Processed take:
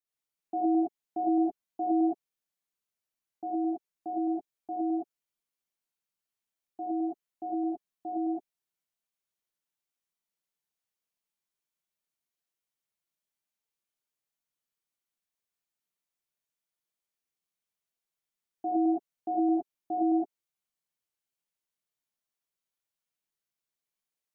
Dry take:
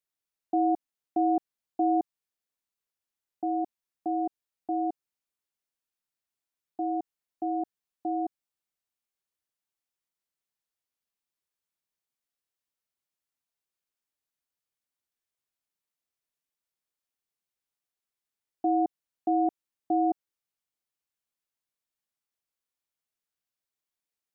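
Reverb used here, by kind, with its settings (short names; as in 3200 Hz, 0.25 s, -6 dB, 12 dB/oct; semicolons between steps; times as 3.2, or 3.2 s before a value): non-linear reverb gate 0.14 s rising, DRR -4.5 dB; gain -7 dB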